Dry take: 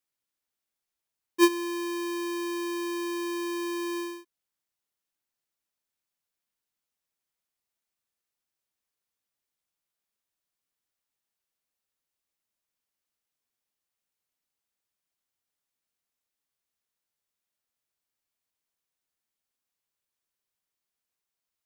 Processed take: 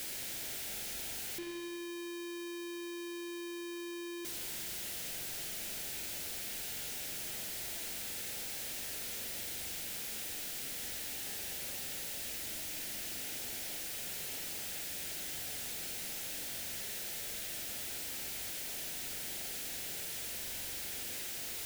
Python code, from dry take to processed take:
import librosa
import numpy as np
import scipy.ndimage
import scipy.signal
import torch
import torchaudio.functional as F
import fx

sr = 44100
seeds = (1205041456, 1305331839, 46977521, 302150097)

y = np.sign(x) * np.sqrt(np.mean(np.square(x)))
y = fx.peak_eq(y, sr, hz=1100.0, db=-15.0, octaves=0.51)
y = fx.rev_spring(y, sr, rt60_s=1.7, pass_ms=(42,), chirp_ms=30, drr_db=2.5)
y = fx.quant_dither(y, sr, seeds[0], bits=10, dither='triangular')
y = F.gain(torch.from_numpy(y), -1.5).numpy()